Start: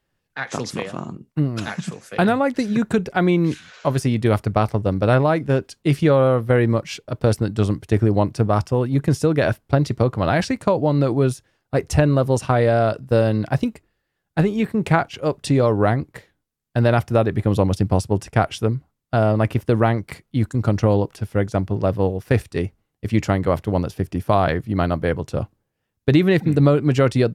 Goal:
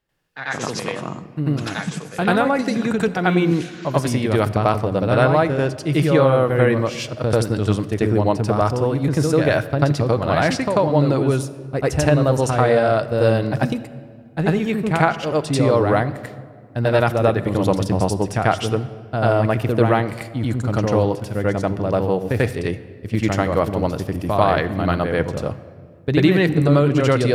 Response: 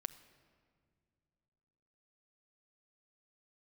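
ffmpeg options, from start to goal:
-filter_complex "[0:a]asplit=2[link_01][link_02];[1:a]atrim=start_sample=2205,lowshelf=frequency=300:gain=-7,adelay=91[link_03];[link_02][link_03]afir=irnorm=-1:irlink=0,volume=9.5dB[link_04];[link_01][link_04]amix=inputs=2:normalize=0,volume=-4.5dB"

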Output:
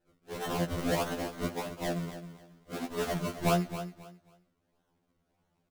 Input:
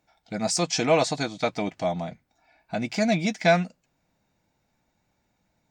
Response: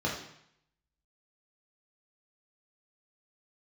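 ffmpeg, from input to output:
-filter_complex "[0:a]highshelf=frequency=2400:gain=2.5,bandreject=frequency=3500:width=14,asplit=2[link_01][link_02];[link_02]acompressor=threshold=-36dB:ratio=6,volume=-1dB[link_03];[link_01][link_03]amix=inputs=2:normalize=0,asplit=2[link_04][link_05];[link_05]asetrate=88200,aresample=44100,atempo=0.5,volume=-7dB[link_06];[link_04][link_06]amix=inputs=2:normalize=0,acrusher=samples=36:mix=1:aa=0.000001:lfo=1:lforange=36:lforate=1.6,asoftclip=type=tanh:threshold=-7dB,aecho=1:1:269|538|807:0.251|0.0603|0.0145,asplit=2[link_07][link_08];[1:a]atrim=start_sample=2205[link_09];[link_08][link_09]afir=irnorm=-1:irlink=0,volume=-23.5dB[link_10];[link_07][link_10]amix=inputs=2:normalize=0,afftfilt=real='re*2*eq(mod(b,4),0)':imag='im*2*eq(mod(b,4),0)':win_size=2048:overlap=0.75,volume=-8.5dB"

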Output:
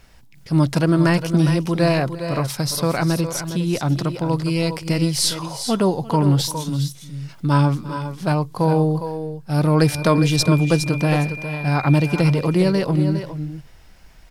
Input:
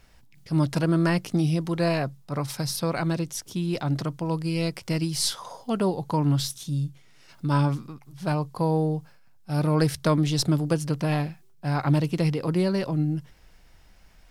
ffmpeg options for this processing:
ffmpeg -i in.wav -filter_complex "[0:a]asettb=1/sr,asplit=3[link_01][link_02][link_03];[link_01]atrim=end=9.804[link_04];[link_02]atrim=start=9.8:end=12.31,asetpts=PTS-STARTPTS,afade=type=in:duration=0.004:curve=qsin,afade=type=out:start_time=2.506:duration=0.004:curve=qsin,aeval=exprs='val(0)+0.01*sin(2*PI*2400*n/s)':channel_layout=same[link_05];[link_03]atrim=start=12.306[link_06];[link_04][link_05]acrossfade=duration=0.004:curve1=hsin:curve2=qsin[link_07];[link_07][link_06]acrossfade=duration=0.004:curve1=qsin:curve2=hsin,aecho=1:1:343|408|410:0.112|0.133|0.316,volume=6dB" out.wav

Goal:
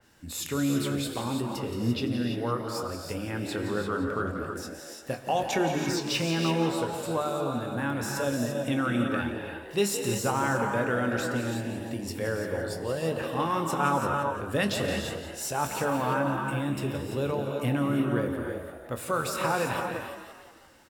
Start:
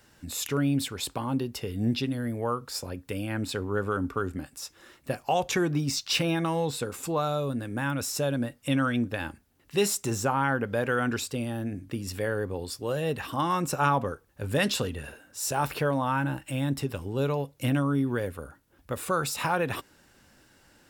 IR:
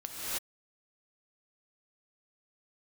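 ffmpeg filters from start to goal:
-filter_complex "[0:a]bandreject=frequency=50:width_type=h:width=6,bandreject=frequency=100:width_type=h:width=6,bandreject=frequency=150:width_type=h:width=6,asplit=7[link_01][link_02][link_03][link_04][link_05][link_06][link_07];[link_02]adelay=172,afreqshift=71,volume=-11dB[link_08];[link_03]adelay=344,afreqshift=142,volume=-16.4dB[link_09];[link_04]adelay=516,afreqshift=213,volume=-21.7dB[link_10];[link_05]adelay=688,afreqshift=284,volume=-27.1dB[link_11];[link_06]adelay=860,afreqshift=355,volume=-32.4dB[link_12];[link_07]adelay=1032,afreqshift=426,volume=-37.8dB[link_13];[link_01][link_08][link_09][link_10][link_11][link_12][link_13]amix=inputs=7:normalize=0,asplit=2[link_14][link_15];[1:a]atrim=start_sample=2205,adelay=25[link_16];[link_15][link_16]afir=irnorm=-1:irlink=0,volume=-7dB[link_17];[link_14][link_17]amix=inputs=2:normalize=0,adynamicequalizer=threshold=0.00794:dfrequency=3000:dqfactor=0.7:tfrequency=3000:tqfactor=0.7:attack=5:release=100:ratio=0.375:range=2:mode=cutabove:tftype=highshelf,volume=-2dB"

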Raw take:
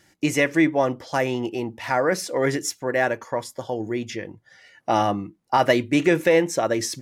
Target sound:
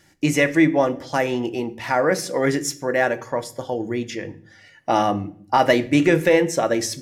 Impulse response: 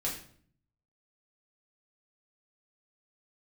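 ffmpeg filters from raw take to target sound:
-filter_complex "[0:a]asplit=2[link_01][link_02];[link_02]lowshelf=frequency=130:gain=12[link_03];[1:a]atrim=start_sample=2205[link_04];[link_03][link_04]afir=irnorm=-1:irlink=0,volume=-13.5dB[link_05];[link_01][link_05]amix=inputs=2:normalize=0"

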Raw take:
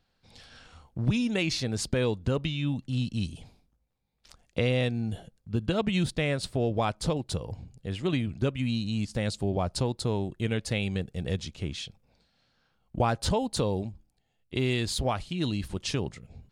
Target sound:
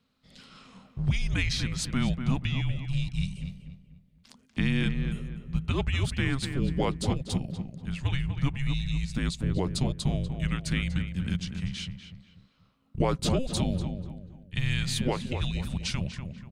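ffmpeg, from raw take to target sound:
ffmpeg -i in.wav -filter_complex "[0:a]afreqshift=-270,asplit=2[link_01][link_02];[link_02]adelay=243,lowpass=frequency=2100:poles=1,volume=-7dB,asplit=2[link_03][link_04];[link_04]adelay=243,lowpass=frequency=2100:poles=1,volume=0.38,asplit=2[link_05][link_06];[link_06]adelay=243,lowpass=frequency=2100:poles=1,volume=0.38,asplit=2[link_07][link_08];[link_08]adelay=243,lowpass=frequency=2100:poles=1,volume=0.38[link_09];[link_01][link_03][link_05][link_07][link_09]amix=inputs=5:normalize=0" out.wav

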